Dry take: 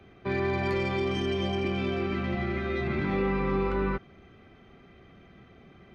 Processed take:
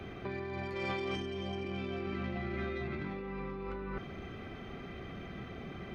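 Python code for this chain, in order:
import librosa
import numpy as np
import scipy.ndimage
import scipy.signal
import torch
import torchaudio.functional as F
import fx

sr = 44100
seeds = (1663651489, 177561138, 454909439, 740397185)

y = fx.low_shelf(x, sr, hz=300.0, db=-8.0, at=(0.75, 1.16))
y = fx.over_compress(y, sr, threshold_db=-38.0, ratio=-1.0)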